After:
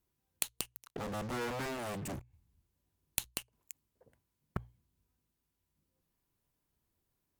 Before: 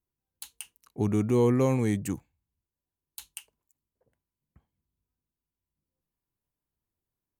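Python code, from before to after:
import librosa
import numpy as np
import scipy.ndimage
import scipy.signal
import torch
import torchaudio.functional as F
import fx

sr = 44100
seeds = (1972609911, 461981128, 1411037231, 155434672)

p1 = fx.cheby_harmonics(x, sr, harmonics=(4, 5, 7), levels_db=(-13, -26, -9), full_scale_db=-12.5)
p2 = fx.low_shelf(p1, sr, hz=250.0, db=8.0, at=(2.07, 3.31))
p3 = fx.fuzz(p2, sr, gain_db=47.0, gate_db=-51.0)
p4 = p2 + F.gain(torch.from_numpy(p3), -7.0).numpy()
p5 = fx.gate_flip(p4, sr, shuts_db=-20.0, range_db=-25)
p6 = fx.hum_notches(p5, sr, base_hz=60, count=2)
y = F.gain(torch.from_numpy(p6), 4.5).numpy()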